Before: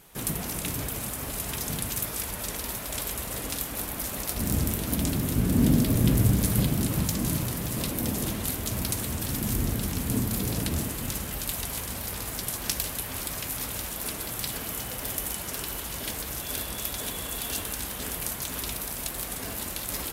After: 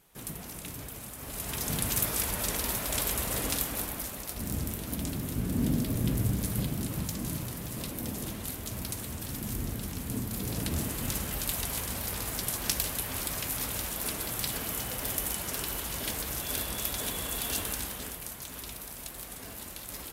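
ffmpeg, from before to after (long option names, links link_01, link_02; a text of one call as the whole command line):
ffmpeg -i in.wav -af "volume=8.5dB,afade=type=in:start_time=1.16:duration=0.81:silence=0.266073,afade=type=out:start_time=3.49:duration=0.69:silence=0.354813,afade=type=in:start_time=10.29:duration=0.82:silence=0.473151,afade=type=out:start_time=17.71:duration=0.48:silence=0.398107" out.wav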